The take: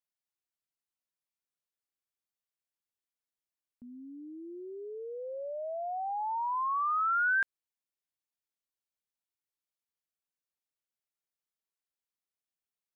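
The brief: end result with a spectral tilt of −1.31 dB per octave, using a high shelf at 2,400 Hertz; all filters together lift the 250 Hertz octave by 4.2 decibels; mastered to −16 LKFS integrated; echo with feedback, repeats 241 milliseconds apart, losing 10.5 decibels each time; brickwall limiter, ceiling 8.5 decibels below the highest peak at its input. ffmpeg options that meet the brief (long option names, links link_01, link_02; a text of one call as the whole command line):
ffmpeg -i in.wav -af "equalizer=frequency=250:width_type=o:gain=5.5,highshelf=frequency=2400:gain=6,alimiter=level_in=6dB:limit=-24dB:level=0:latency=1,volume=-6dB,aecho=1:1:241|482|723:0.299|0.0896|0.0269,volume=19.5dB" out.wav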